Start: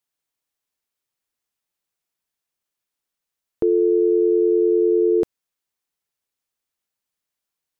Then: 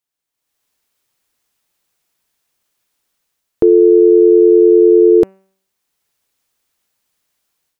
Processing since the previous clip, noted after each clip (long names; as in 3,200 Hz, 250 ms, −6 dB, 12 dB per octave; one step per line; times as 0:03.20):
hum removal 191.7 Hz, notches 15
automatic gain control gain up to 14 dB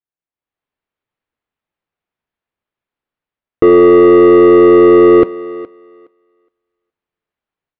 leveller curve on the samples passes 3
high-frequency loss of the air 470 metres
feedback echo with a high-pass in the loop 417 ms, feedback 16%, high-pass 250 Hz, level −17 dB